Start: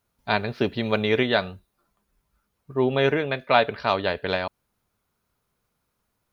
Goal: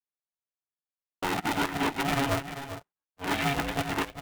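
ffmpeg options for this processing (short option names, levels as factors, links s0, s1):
-filter_complex "[0:a]areverse,agate=range=0.0224:threshold=0.0178:ratio=3:detection=peak,highpass=500,asplit=2[s0][s1];[s1]acompressor=threshold=0.0178:ratio=6,volume=0.891[s2];[s0][s2]amix=inputs=2:normalize=0,aeval=exprs='(tanh(35.5*val(0)+0.5)-tanh(0.5))/35.5':c=same,flanger=delay=16:depth=3.2:speed=2.3,adynamicsmooth=sensitivity=2.5:basefreq=1000,crystalizer=i=7:c=0,atempo=1.5,asplit=2[s3][s4];[s4]aecho=0:1:397:0.282[s5];[s3][s5]amix=inputs=2:normalize=0,aresample=8000,aresample=44100,aeval=exprs='val(0)*sgn(sin(2*PI*280*n/s))':c=same,volume=2.66"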